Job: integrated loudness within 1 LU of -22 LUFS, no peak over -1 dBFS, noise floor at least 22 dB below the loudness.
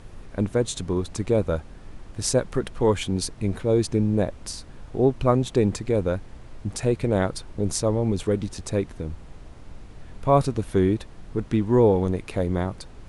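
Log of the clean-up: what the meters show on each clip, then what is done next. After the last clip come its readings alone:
noise floor -44 dBFS; noise floor target -47 dBFS; loudness -24.5 LUFS; peak level -6.5 dBFS; loudness target -22.0 LUFS
-> noise print and reduce 6 dB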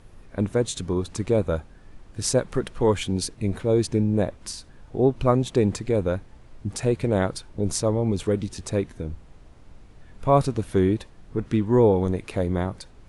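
noise floor -50 dBFS; loudness -24.5 LUFS; peak level -6.5 dBFS; loudness target -22.0 LUFS
-> trim +2.5 dB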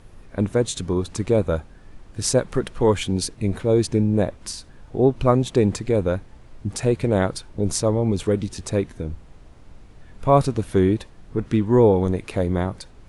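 loudness -22.0 LUFS; peak level -4.0 dBFS; noise floor -47 dBFS

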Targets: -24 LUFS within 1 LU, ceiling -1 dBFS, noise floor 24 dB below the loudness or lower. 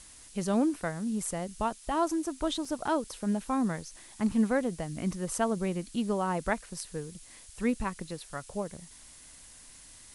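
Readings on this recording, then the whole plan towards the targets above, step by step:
dropouts 1; longest dropout 3.1 ms; noise floor -52 dBFS; noise floor target -56 dBFS; loudness -32.0 LUFS; peak level -15.5 dBFS; loudness target -24.0 LUFS
-> interpolate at 2.65 s, 3.1 ms; noise reduction 6 dB, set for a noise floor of -52 dBFS; trim +8 dB

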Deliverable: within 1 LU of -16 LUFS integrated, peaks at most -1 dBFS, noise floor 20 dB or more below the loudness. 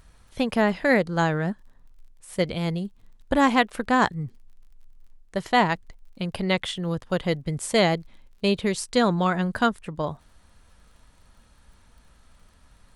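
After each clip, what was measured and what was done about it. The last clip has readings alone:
tick rate 35 per s; loudness -24.5 LUFS; peak level -5.5 dBFS; loudness target -16.0 LUFS
-> de-click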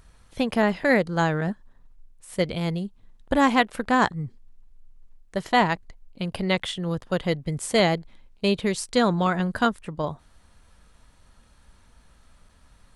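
tick rate 0 per s; loudness -24.5 LUFS; peak level -5.5 dBFS; loudness target -16.0 LUFS
-> trim +8.5 dB; peak limiter -1 dBFS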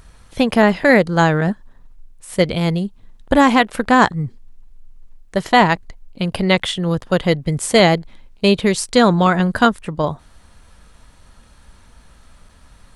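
loudness -16.5 LUFS; peak level -1.0 dBFS; noise floor -49 dBFS

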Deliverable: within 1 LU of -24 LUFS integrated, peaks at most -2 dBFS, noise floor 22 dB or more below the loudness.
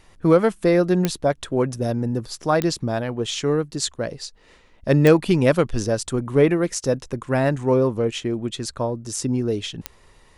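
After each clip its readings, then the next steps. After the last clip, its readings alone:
clicks found 4; loudness -21.5 LUFS; peak level -2.5 dBFS; loudness target -24.0 LUFS
-> de-click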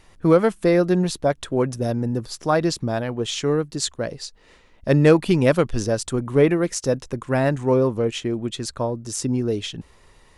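clicks found 0; loudness -21.5 LUFS; peak level -2.5 dBFS; loudness target -24.0 LUFS
-> trim -2.5 dB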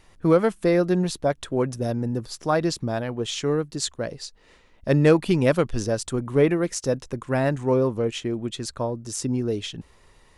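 loudness -24.0 LUFS; peak level -5.0 dBFS; noise floor -56 dBFS

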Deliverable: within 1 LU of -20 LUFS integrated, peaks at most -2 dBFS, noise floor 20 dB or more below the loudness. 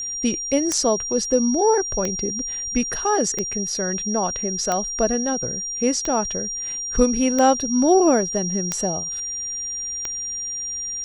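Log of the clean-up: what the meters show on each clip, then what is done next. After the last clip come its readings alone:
clicks found 8; steady tone 5.7 kHz; tone level -26 dBFS; loudness -21.5 LUFS; peak level -4.5 dBFS; loudness target -20.0 LUFS
-> de-click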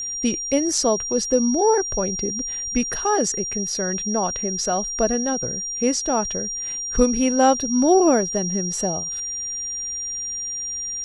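clicks found 0; steady tone 5.7 kHz; tone level -26 dBFS
-> band-stop 5.7 kHz, Q 30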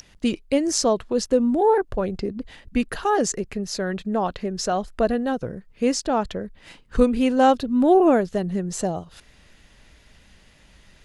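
steady tone not found; loudness -22.5 LUFS; peak level -5.0 dBFS; loudness target -20.0 LUFS
-> trim +2.5 dB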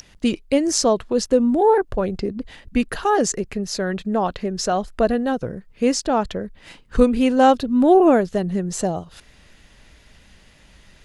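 loudness -20.0 LUFS; peak level -2.5 dBFS; noise floor -52 dBFS

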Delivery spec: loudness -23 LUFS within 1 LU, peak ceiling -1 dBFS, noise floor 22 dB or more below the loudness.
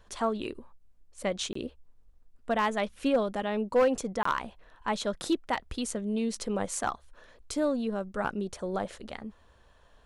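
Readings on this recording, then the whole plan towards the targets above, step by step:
clipped samples 0.2%; clipping level -18.0 dBFS; dropouts 2; longest dropout 24 ms; loudness -31.0 LUFS; peak level -18.0 dBFS; loudness target -23.0 LUFS
-> clip repair -18 dBFS; interpolate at 1.53/4.23 s, 24 ms; trim +8 dB

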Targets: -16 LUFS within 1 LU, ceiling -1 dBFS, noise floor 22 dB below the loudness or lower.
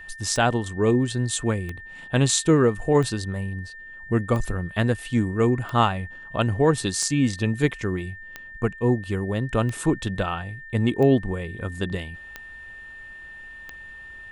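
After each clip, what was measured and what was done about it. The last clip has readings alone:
clicks found 11; steady tone 1.8 kHz; tone level -39 dBFS; loudness -24.0 LUFS; peak level -5.0 dBFS; loudness target -16.0 LUFS
-> de-click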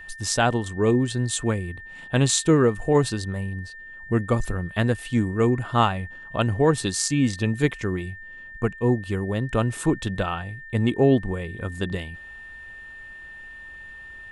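clicks found 0; steady tone 1.8 kHz; tone level -39 dBFS
-> band-stop 1.8 kHz, Q 30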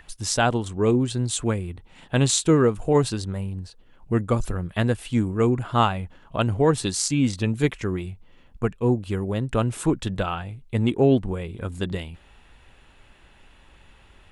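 steady tone not found; loudness -24.0 LUFS; peak level -5.5 dBFS; loudness target -16.0 LUFS
-> trim +8 dB; peak limiter -1 dBFS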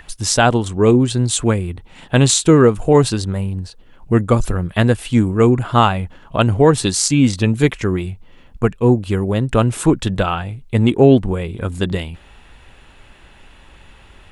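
loudness -16.0 LUFS; peak level -1.0 dBFS; noise floor -46 dBFS

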